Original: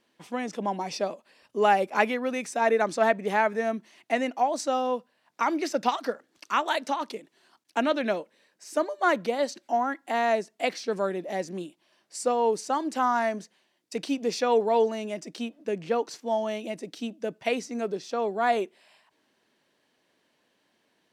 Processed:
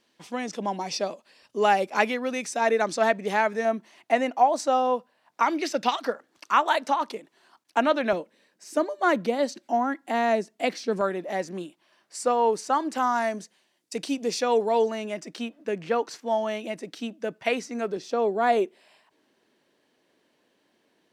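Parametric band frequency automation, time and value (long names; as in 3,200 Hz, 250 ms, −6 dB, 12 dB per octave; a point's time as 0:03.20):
parametric band +5.5 dB 1.5 octaves
5,200 Hz
from 0:03.65 840 Hz
from 0:05.45 3,200 Hz
from 0:06.04 1,000 Hz
from 0:08.13 230 Hz
from 0:11.01 1,300 Hz
from 0:12.98 8,900 Hz
from 0:14.91 1,500 Hz
from 0:17.97 360 Hz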